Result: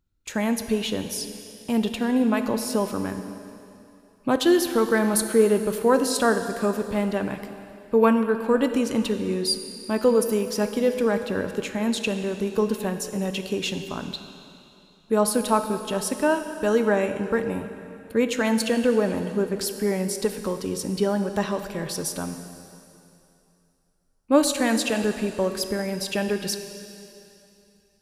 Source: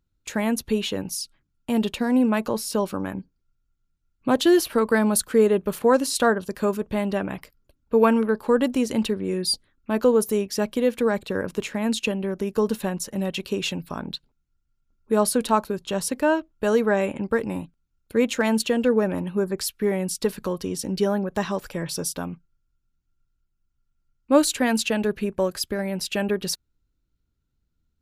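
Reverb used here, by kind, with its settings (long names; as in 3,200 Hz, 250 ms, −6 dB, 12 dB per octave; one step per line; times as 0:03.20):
dense smooth reverb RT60 2.8 s, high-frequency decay 1×, DRR 7.5 dB
level −1 dB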